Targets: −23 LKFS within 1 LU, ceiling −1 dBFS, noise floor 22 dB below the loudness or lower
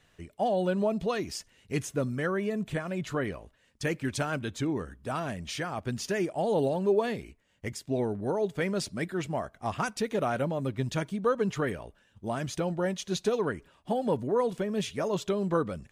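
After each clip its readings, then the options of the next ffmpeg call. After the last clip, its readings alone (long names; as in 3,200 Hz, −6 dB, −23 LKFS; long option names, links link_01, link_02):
integrated loudness −31.0 LKFS; sample peak −15.5 dBFS; target loudness −23.0 LKFS
→ -af "volume=8dB"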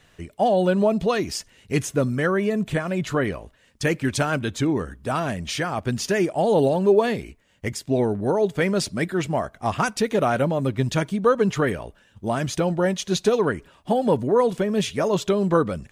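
integrated loudness −23.0 LKFS; sample peak −7.5 dBFS; background noise floor −58 dBFS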